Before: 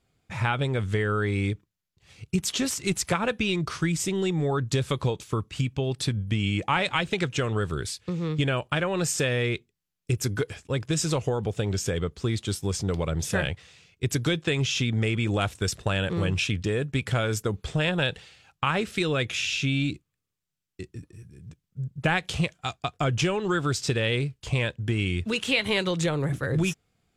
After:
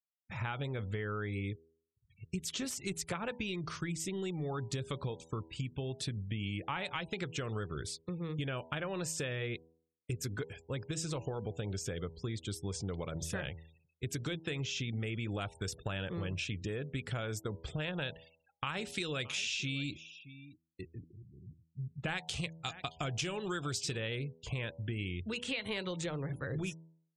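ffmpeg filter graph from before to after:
-filter_complex "[0:a]asettb=1/sr,asplit=3[s0][s1][s2];[s0]atrim=end=18.124[s3];[s1]atrim=start=18.12:end=23.97,asetpts=PTS-STARTPTS,afade=t=in:d=0.004:c=qsin,afade=t=out:st=5.846:d=0.004:c=qsin,aecho=1:1:622:0.1,atrim=end_sample=257985,adynamicequalizer=threshold=0.00891:dfrequency=2300:dqfactor=0.7:tfrequency=2300:tqfactor=0.7:attack=5:release=100:ratio=0.375:range=3.5:mode=boostabove:tftype=highshelf[s4];[s2]atrim=start=23.966[s5];[s3][s4]acrossfade=d=0.004:c1=hsin:c2=qsin[s6];[s6][s5]acrossfade=d=0.004:c1=qsin:c2=hsin,afftfilt=real='re*gte(hypot(re,im),0.00794)':imag='im*gte(hypot(re,im),0.00794)':win_size=1024:overlap=0.75,bandreject=f=81.33:t=h:w=4,bandreject=f=162.66:t=h:w=4,bandreject=f=243.99:t=h:w=4,bandreject=f=325.32:t=h:w=4,bandreject=f=406.65:t=h:w=4,bandreject=f=487.98:t=h:w=4,bandreject=f=569.31:t=h:w=4,bandreject=f=650.64:t=h:w=4,bandreject=f=731.97:t=h:w=4,bandreject=f=813.3:t=h:w=4,bandreject=f=894.63:t=h:w=4,bandreject=f=975.96:t=h:w=4,acompressor=threshold=0.0355:ratio=2.5,volume=0.447"

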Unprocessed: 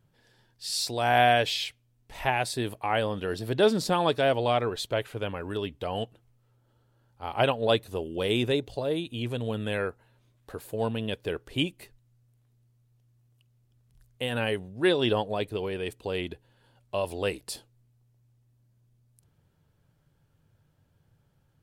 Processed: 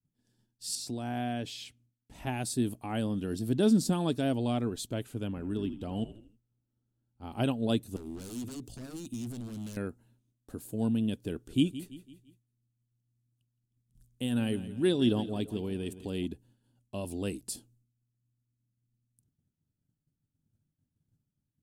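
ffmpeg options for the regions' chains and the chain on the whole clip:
-filter_complex "[0:a]asettb=1/sr,asplit=3[s0][s1][s2];[s0]atrim=end=0.754[s3];[s1]atrim=start=0.75:end=2.27,asetpts=PTS-STARTPTS,afade=t=in:d=0.004:c=qsin,afade=t=out:st=1.516:d=0.004:c=qsin,highpass=45,aemphasis=mode=reproduction:type=cd,acompressor=threshold=0.02:ratio=1.5:attack=3.2:release=140:knee=1:detection=peak[s4];[s2]atrim=start=2.266[s5];[s3][s4]acrossfade=d=0.004:c1=hsin:c2=qsin[s6];[s6][s5]acrossfade=d=0.004:c1=qsin:c2=hsin,asettb=1/sr,asplit=3[s7][s8][s9];[s7]atrim=end=5.284[s10];[s8]atrim=start=5.28:end=7.32,asetpts=PTS-STARTPTS,afade=t=in:d=0.004:c=qsin,afade=t=out:st=2.036:d=0.004:c=qsin,highshelf=f=6500:g=-9,asplit=5[s11][s12][s13][s14][s15];[s12]adelay=80,afreqshift=-56,volume=0.224[s16];[s13]adelay=160,afreqshift=-112,volume=0.0944[s17];[s14]adelay=240,afreqshift=-168,volume=0.0394[s18];[s15]adelay=320,afreqshift=-224,volume=0.0166[s19];[s11][s16][s17][s18][s19]amix=inputs=5:normalize=0,atrim=end_sample=89964[s20];[s9]atrim=start=7.316[s21];[s10][s20]acrossfade=d=0.004:c1=hsin:c2=qsin[s22];[s22][s21]acrossfade=d=0.004:c1=qsin:c2=hsin,asettb=1/sr,asplit=3[s23][s24][s25];[s23]atrim=end=7.964[s26];[s24]atrim=start=7.96:end=9.77,asetpts=PTS-STARTPTS,afade=t=in:d=0.004:c=qsin,afade=t=out:st=1.806:d=0.004:c=qsin,highshelf=f=4400:g=6,acompressor=threshold=0.0224:ratio=3:attack=3.2:release=140:knee=1:detection=peak,aeval=exprs='0.0178*(abs(mod(val(0)/0.0178+3,4)-2)-1)':c=same[s27];[s25]atrim=start=9.766[s28];[s26][s27]acrossfade=d=0.004:c1=hsin:c2=qsin[s29];[s29][s28]acrossfade=d=0.004:c1=qsin:c2=hsin,asettb=1/sr,asplit=3[s30][s31][s32];[s30]atrim=end=11.324[s33];[s31]atrim=start=11.32:end=16.26,asetpts=PTS-STARTPTS,afade=t=in:d=0.004:c=qsin,afade=t=out:st=4.936:d=0.004:c=qsin,equalizer=f=3400:t=o:w=0.33:g=3.5,aecho=1:1:168|336|504|672:0.178|0.0836|0.0393|0.0185,atrim=end_sample=217854[s34];[s32]atrim=start=16.256[s35];[s33][s34]acrossfade=d=0.004:c1=hsin:c2=qsin[s36];[s36][s35]acrossfade=d=0.004:c1=qsin:c2=hsin,agate=range=0.0224:threshold=0.00158:ratio=3:detection=peak,equalizer=f=250:t=o:w=1:g=11,equalizer=f=500:t=o:w=1:g=-9,equalizer=f=1000:t=o:w=1:g=-8,equalizer=f=2000:t=o:w=1:g=-10,equalizer=f=4000:t=o:w=1:g=-5,equalizer=f=8000:t=o:w=1:g=5,volume=0.794"

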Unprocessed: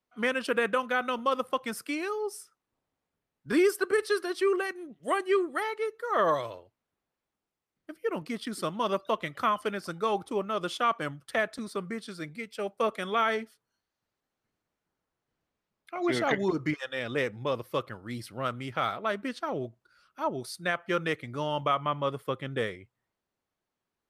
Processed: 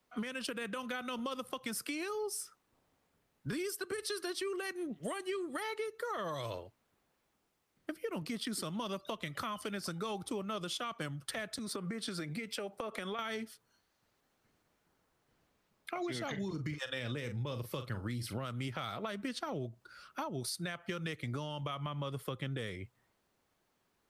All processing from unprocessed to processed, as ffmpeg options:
-filter_complex "[0:a]asettb=1/sr,asplit=3[s0][s1][s2];[s0]atrim=end=11.564[s3];[s1]atrim=start=11.56:end=13.19,asetpts=PTS-STARTPTS,afade=t=in:d=0.004:c=qsin,afade=t=out:st=1.626:d=0.004:c=qsin,highpass=47,acompressor=threshold=0.00794:ratio=10:attack=3.2:release=140:knee=1:detection=peak[s4];[s2]atrim=start=13.186[s5];[s3][s4]acrossfade=d=0.004:c1=hsin:c2=qsin[s6];[s6][s5]acrossfade=d=0.004:c1=qsin:c2=hsin,asettb=1/sr,asplit=3[s7][s8][s9];[s7]atrim=end=16.274[s10];[s8]atrim=start=16.27:end=18.38,asetpts=PTS-STARTPTS,afade=t=in:d=0.004:c=qsin,afade=t=out:st=2.106:d=0.004:c=qsin,equalizer=f=89:w=0.77:g=4.5,bandreject=f=730:w=17,asplit=2[s11][s12];[s12]adelay=41,volume=0.251[s13];[s11][s13]amix=inputs=2:normalize=0,atrim=end_sample=93051[s14];[s9]atrim=start=18.376[s15];[s10][s14]acrossfade=d=0.004:c1=hsin:c2=qsin[s16];[s16][s15]acrossfade=d=0.004:c1=qsin:c2=hsin,acrossover=split=200|3000[s17][s18][s19];[s18]acompressor=threshold=0.00562:ratio=2[s20];[s17][s20][s19]amix=inputs=3:normalize=0,alimiter=level_in=2.66:limit=0.0631:level=0:latency=1:release=219,volume=0.376,acompressor=threshold=0.00631:ratio=6,volume=2.82"

